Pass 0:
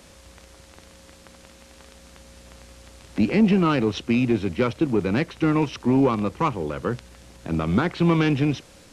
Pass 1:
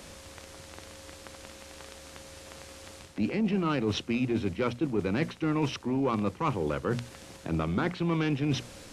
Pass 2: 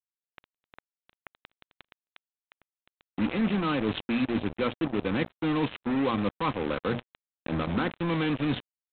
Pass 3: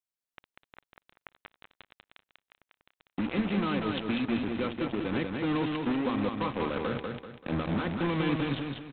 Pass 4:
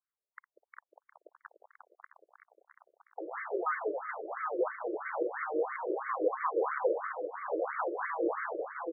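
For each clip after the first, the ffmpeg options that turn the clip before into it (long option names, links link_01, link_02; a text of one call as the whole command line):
ffmpeg -i in.wav -af "bandreject=frequency=60:width_type=h:width=6,bandreject=frequency=120:width_type=h:width=6,bandreject=frequency=180:width_type=h:width=6,bandreject=frequency=240:width_type=h:width=6,areverse,acompressor=threshold=-28dB:ratio=6,areverse,volume=2.5dB" out.wav
ffmpeg -i in.wav -af "aecho=1:1:3.9:0.32,aresample=8000,acrusher=bits=4:mix=0:aa=0.5,aresample=44100" out.wav
ffmpeg -i in.wav -filter_complex "[0:a]alimiter=limit=-22.5dB:level=0:latency=1:release=128,asplit=2[link_01][link_02];[link_02]aecho=0:1:193|386|579|772|965:0.631|0.227|0.0818|0.0294|0.0106[link_03];[link_01][link_03]amix=inputs=2:normalize=0" out.wav
ffmpeg -i in.wav -filter_complex "[0:a]asplit=2[link_01][link_02];[link_02]adelay=776,lowpass=frequency=3300:poles=1,volume=-5dB,asplit=2[link_03][link_04];[link_04]adelay=776,lowpass=frequency=3300:poles=1,volume=0.46,asplit=2[link_05][link_06];[link_06]adelay=776,lowpass=frequency=3300:poles=1,volume=0.46,asplit=2[link_07][link_08];[link_08]adelay=776,lowpass=frequency=3300:poles=1,volume=0.46,asplit=2[link_09][link_10];[link_10]adelay=776,lowpass=frequency=3300:poles=1,volume=0.46,asplit=2[link_11][link_12];[link_12]adelay=776,lowpass=frequency=3300:poles=1,volume=0.46[link_13];[link_01][link_03][link_05][link_07][link_09][link_11][link_13]amix=inputs=7:normalize=0,afftfilt=real='re*between(b*sr/1024,440*pow(1600/440,0.5+0.5*sin(2*PI*3*pts/sr))/1.41,440*pow(1600/440,0.5+0.5*sin(2*PI*3*pts/sr))*1.41)':imag='im*between(b*sr/1024,440*pow(1600/440,0.5+0.5*sin(2*PI*3*pts/sr))/1.41,440*pow(1600/440,0.5+0.5*sin(2*PI*3*pts/sr))*1.41)':win_size=1024:overlap=0.75,volume=5dB" out.wav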